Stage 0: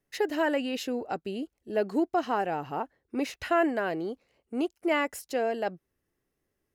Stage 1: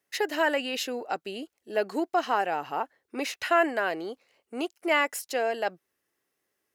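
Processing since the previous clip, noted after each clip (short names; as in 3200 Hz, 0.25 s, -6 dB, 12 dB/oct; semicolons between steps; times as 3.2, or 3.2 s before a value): HPF 880 Hz 6 dB/oct; gain +6 dB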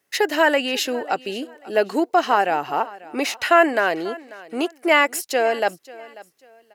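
feedback echo 0.541 s, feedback 28%, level -20 dB; gain +8 dB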